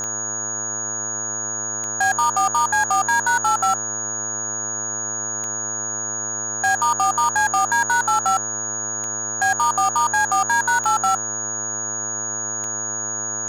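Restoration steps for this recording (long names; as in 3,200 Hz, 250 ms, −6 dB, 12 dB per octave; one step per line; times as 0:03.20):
clipped peaks rebuilt −13 dBFS
click removal
hum removal 106.9 Hz, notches 16
notch filter 6,700 Hz, Q 30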